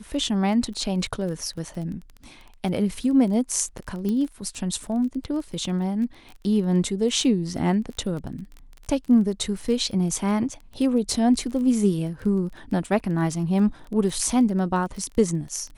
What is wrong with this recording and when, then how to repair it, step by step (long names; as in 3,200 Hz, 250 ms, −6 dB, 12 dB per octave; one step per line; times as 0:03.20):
surface crackle 20 per second −32 dBFS
0:04.09: click −17 dBFS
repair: click removal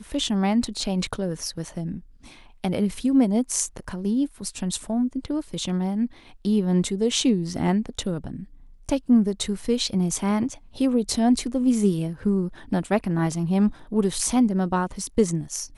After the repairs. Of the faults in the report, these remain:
none of them is left